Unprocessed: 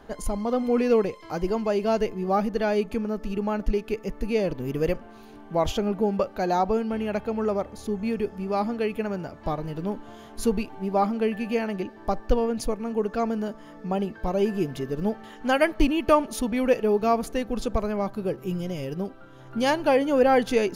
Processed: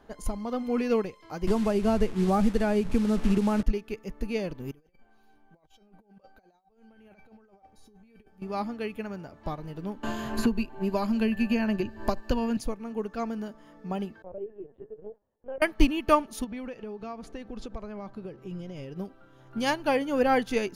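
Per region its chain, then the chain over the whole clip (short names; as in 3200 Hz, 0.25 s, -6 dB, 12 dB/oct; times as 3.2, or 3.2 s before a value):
1.47–3.63 delta modulation 64 kbps, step -33.5 dBFS + tilt -2 dB/oct + three-band squash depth 100%
4.71–8.42 resonator 770 Hz, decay 0.27 s, mix 90% + negative-ratio compressor -48 dBFS, ratio -0.5
10.03–12.57 ripple EQ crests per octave 1.4, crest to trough 8 dB + three-band squash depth 100%
14.22–15.62 expander -32 dBFS + band-pass 490 Hz, Q 3.1 + LPC vocoder at 8 kHz pitch kept
16.44–18.96 compressor 3:1, threshold -28 dBFS + air absorption 69 m
whole clip: dynamic EQ 520 Hz, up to -5 dB, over -34 dBFS, Q 0.96; upward expander 1.5:1, over -35 dBFS; gain +2.5 dB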